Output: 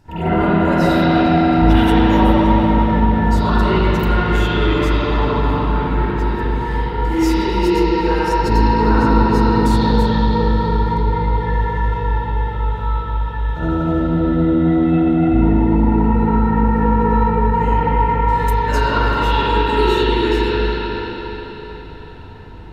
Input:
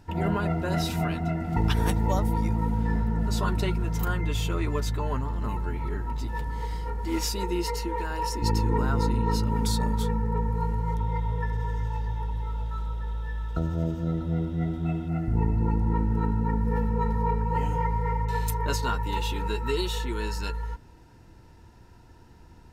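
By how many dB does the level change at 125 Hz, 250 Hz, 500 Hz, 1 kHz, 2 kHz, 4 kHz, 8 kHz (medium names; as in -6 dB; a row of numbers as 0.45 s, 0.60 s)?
+8.5 dB, +14.5 dB, +14.5 dB, +14.0 dB, +14.0 dB, +10.0 dB, no reading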